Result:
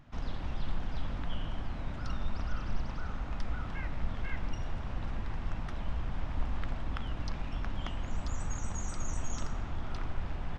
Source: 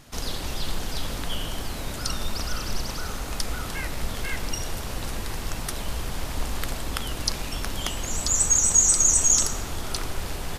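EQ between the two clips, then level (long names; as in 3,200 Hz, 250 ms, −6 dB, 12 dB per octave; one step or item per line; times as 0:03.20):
head-to-tape spacing loss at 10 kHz 38 dB
parametric band 430 Hz −8.5 dB 0.9 octaves
parametric band 4,400 Hz −3.5 dB 0.29 octaves
−3.0 dB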